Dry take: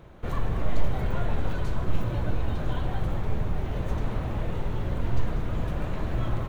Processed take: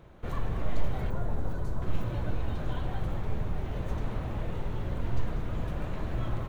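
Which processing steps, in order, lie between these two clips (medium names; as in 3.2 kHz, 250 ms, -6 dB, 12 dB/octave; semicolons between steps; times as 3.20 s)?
1.10–1.82 s: peaking EQ 2.8 kHz -12 dB 1.5 oct; trim -4 dB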